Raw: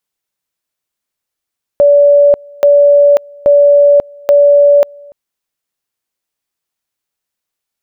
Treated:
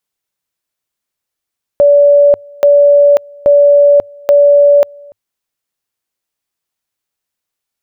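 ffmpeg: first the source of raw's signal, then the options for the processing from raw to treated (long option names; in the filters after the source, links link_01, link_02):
-f lavfi -i "aevalsrc='pow(10,(-3-28.5*gte(mod(t,0.83),0.54))/20)*sin(2*PI*575*t)':duration=3.32:sample_rate=44100"
-af "equalizer=frequency=100:width_type=o:width=0.25:gain=3.5"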